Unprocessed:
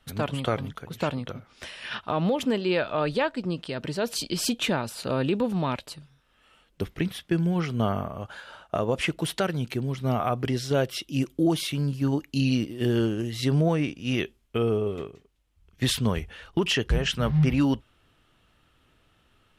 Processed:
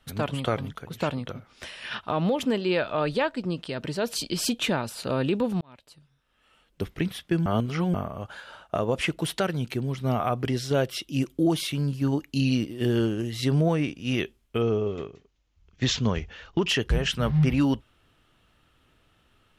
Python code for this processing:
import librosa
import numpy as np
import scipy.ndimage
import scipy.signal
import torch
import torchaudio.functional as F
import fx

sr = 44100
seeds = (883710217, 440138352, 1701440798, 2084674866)

y = fx.resample_bad(x, sr, factor=3, down='none', up='filtered', at=(14.61, 16.69))
y = fx.edit(y, sr, fx.fade_in_span(start_s=5.61, length_s=1.28),
    fx.reverse_span(start_s=7.46, length_s=0.48), tone=tone)